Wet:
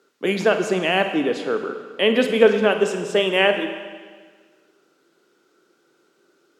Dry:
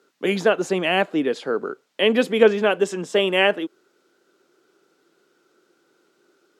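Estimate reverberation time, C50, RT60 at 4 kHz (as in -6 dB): 1.6 s, 7.5 dB, 1.5 s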